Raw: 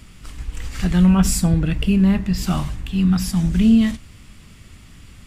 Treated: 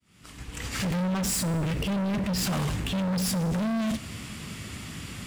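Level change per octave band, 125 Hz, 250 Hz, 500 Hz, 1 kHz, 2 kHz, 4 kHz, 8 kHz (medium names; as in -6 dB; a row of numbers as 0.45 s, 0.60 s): -9.5 dB, -11.5 dB, -2.0 dB, -3.0 dB, -2.5 dB, -2.0 dB, -3.0 dB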